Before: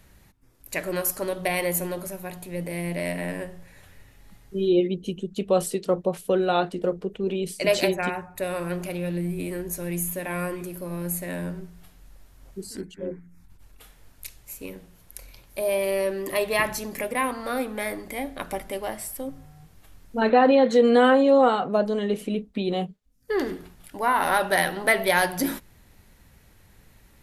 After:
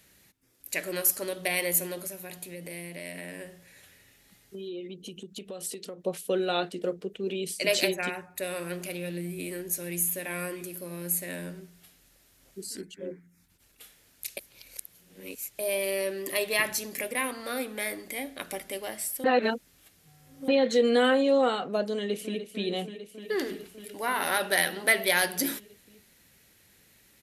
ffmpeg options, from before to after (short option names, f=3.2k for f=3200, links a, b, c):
-filter_complex "[0:a]asettb=1/sr,asplit=3[a][b][c];[a]atrim=end=2.064[d];[b]atrim=start=2.06:end=6.02,asetpts=PTS-STARTPTS,afade=t=in:d=0.004:c=qsin,afade=t=out:st=3.956:d=0.004:c=qsin,acompressor=threshold=-31dB:ratio=6:attack=3.2:release=140:knee=1:detection=peak[e];[c]atrim=start=6.016[f];[d][e]acrossfade=d=0.004:c1=hsin:c2=qsin[g];[g][f]acrossfade=d=0.004:c1=qsin:c2=hsin,asplit=2[h][i];[i]afade=t=in:st=21.94:d=0.01,afade=t=out:st=22.43:d=0.01,aecho=0:1:300|600|900|1200|1500|1800|2100|2400|2700|3000|3300|3600:0.316228|0.268794|0.228475|0.194203|0.165073|0.140312|0.119265|0.101375|0.0861691|0.0732437|0.0622572|0.0529186[j];[h][j]amix=inputs=2:normalize=0,asplit=5[k][l][m][n][o];[k]atrim=end=14.372[p];[l]atrim=start=14.368:end=15.592,asetpts=PTS-STARTPTS,areverse[q];[m]atrim=start=15.588:end=19.242[r];[n]atrim=start=19.238:end=20.482,asetpts=PTS-STARTPTS,areverse[s];[o]atrim=start=20.478[t];[p][q]acrossfade=d=0.004:c1=hsin:c2=hsin[u];[u][r]acrossfade=d=0.004:c1=hsin:c2=hsin[v];[v][s]acrossfade=d=0.004:c1=hsin:c2=hsin[w];[w][t]acrossfade=d=0.004:c1=hsin:c2=hsin,highpass=f=540:p=1,equalizer=f=950:w=0.92:g=-10.5,volume=2.5dB"